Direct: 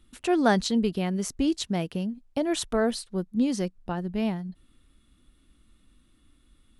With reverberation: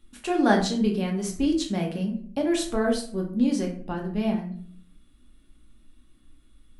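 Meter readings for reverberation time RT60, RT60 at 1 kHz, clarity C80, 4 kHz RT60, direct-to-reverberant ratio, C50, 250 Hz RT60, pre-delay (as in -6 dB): 0.55 s, 0.45 s, 11.5 dB, 0.30 s, 0.0 dB, 8.0 dB, 0.70 s, 4 ms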